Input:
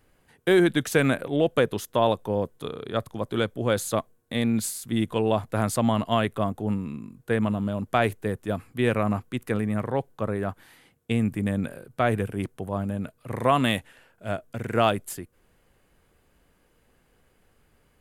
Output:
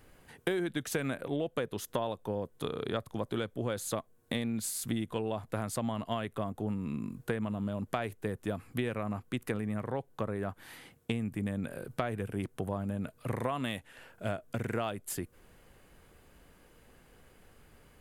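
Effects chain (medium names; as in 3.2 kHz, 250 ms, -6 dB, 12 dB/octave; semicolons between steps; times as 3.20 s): compression 8:1, threshold -35 dBFS, peak gain reduction 19 dB; trim +4.5 dB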